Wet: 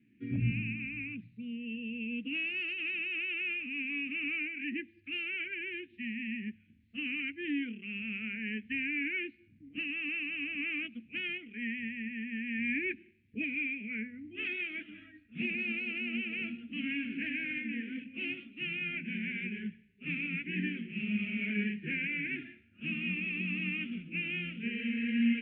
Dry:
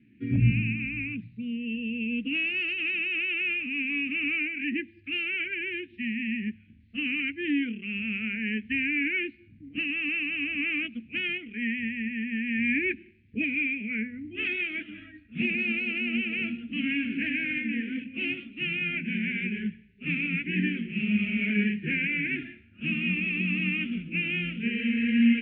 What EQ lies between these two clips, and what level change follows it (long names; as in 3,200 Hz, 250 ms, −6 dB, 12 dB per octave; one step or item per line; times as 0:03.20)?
low-shelf EQ 66 Hz −12 dB
−6.5 dB